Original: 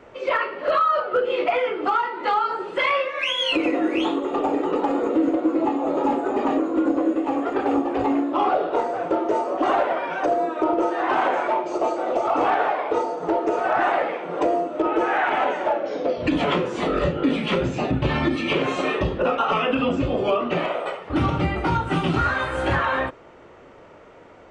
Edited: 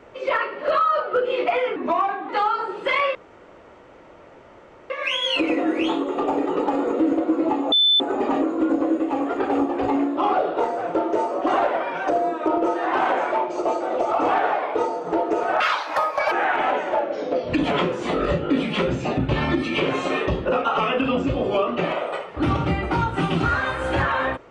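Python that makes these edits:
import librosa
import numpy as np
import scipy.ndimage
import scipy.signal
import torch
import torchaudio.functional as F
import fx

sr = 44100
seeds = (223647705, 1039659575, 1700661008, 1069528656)

y = fx.edit(x, sr, fx.speed_span(start_s=1.76, length_s=0.44, speed=0.83),
    fx.insert_room_tone(at_s=3.06, length_s=1.75),
    fx.bleep(start_s=5.88, length_s=0.28, hz=3520.0, db=-13.5),
    fx.speed_span(start_s=13.76, length_s=1.29, speed=1.8), tone=tone)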